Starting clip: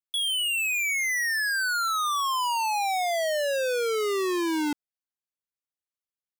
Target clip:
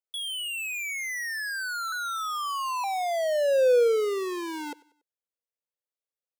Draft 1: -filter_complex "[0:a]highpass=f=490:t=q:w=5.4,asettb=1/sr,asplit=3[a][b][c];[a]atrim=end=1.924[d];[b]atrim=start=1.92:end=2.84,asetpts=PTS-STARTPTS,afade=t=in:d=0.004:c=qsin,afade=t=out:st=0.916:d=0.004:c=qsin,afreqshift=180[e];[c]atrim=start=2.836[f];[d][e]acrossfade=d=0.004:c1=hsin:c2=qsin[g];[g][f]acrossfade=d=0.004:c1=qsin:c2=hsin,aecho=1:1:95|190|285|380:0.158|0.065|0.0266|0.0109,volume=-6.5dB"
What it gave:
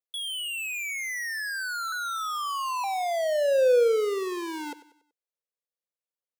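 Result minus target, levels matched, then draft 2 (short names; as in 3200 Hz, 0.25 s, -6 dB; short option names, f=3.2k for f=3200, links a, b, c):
echo-to-direct +6.5 dB
-filter_complex "[0:a]highpass=f=490:t=q:w=5.4,asettb=1/sr,asplit=3[a][b][c];[a]atrim=end=1.924[d];[b]atrim=start=1.92:end=2.84,asetpts=PTS-STARTPTS,afade=t=in:d=0.004:c=qsin,afade=t=out:st=0.916:d=0.004:c=qsin,afreqshift=180[e];[c]atrim=start=2.836[f];[d][e]acrossfade=d=0.004:c1=hsin:c2=qsin[g];[g][f]acrossfade=d=0.004:c1=qsin:c2=hsin,aecho=1:1:95|190|285:0.075|0.0307|0.0126,volume=-6.5dB"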